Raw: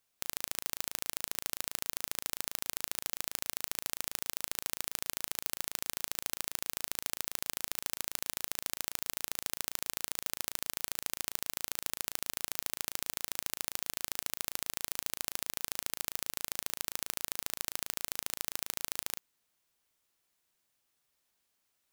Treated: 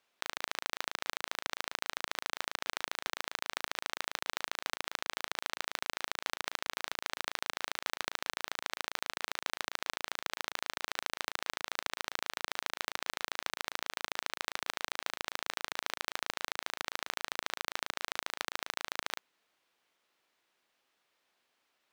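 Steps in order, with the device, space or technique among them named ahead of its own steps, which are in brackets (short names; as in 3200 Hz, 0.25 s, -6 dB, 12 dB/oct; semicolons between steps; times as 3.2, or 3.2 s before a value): early digital voice recorder (BPF 280–3500 Hz; block floating point 3-bit); gain +7.5 dB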